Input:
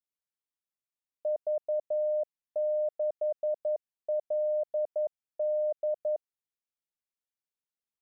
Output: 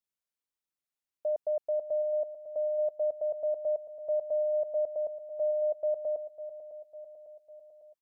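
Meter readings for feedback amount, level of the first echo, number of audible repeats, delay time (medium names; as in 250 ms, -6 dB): 57%, -13.0 dB, 5, 551 ms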